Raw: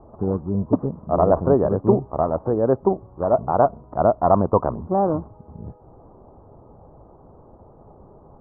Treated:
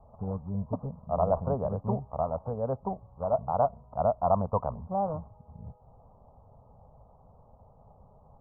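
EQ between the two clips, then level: air absorption 490 m; fixed phaser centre 820 Hz, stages 4; -5.5 dB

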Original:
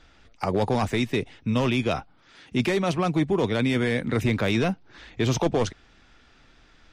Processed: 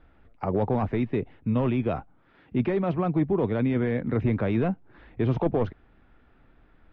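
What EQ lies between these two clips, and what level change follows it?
LPF 1200 Hz 6 dB/oct; air absorption 340 m; 0.0 dB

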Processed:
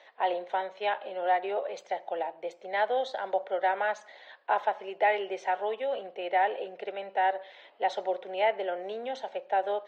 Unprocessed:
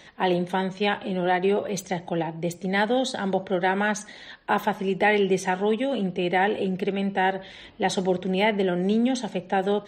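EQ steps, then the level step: ladder high-pass 510 Hz, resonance 45%; air absorption 190 m; +3.0 dB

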